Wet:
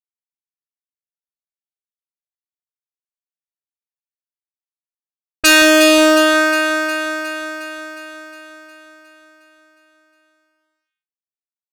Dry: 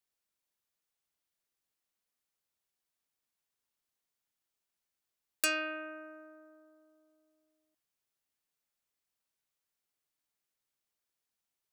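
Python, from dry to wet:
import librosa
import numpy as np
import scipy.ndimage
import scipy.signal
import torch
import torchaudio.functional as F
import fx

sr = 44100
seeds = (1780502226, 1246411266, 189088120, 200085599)

y = fx.fuzz(x, sr, gain_db=53.0, gate_db=-52.0)
y = fx.env_lowpass(y, sr, base_hz=420.0, full_db=-15.0)
y = fx.echo_alternate(y, sr, ms=180, hz=1600.0, feedback_pct=78, wet_db=-5.5)
y = y * librosa.db_to_amplitude(5.0)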